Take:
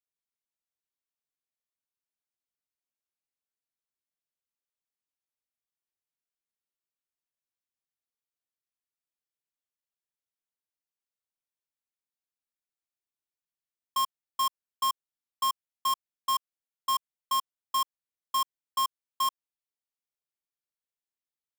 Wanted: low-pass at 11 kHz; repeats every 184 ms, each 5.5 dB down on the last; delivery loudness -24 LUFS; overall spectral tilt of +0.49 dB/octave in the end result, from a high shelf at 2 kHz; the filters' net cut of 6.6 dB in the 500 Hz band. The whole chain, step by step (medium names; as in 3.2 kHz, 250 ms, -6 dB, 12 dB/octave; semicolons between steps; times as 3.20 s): low-pass 11 kHz; peaking EQ 500 Hz -9 dB; treble shelf 2 kHz -3 dB; feedback delay 184 ms, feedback 53%, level -5.5 dB; trim +9 dB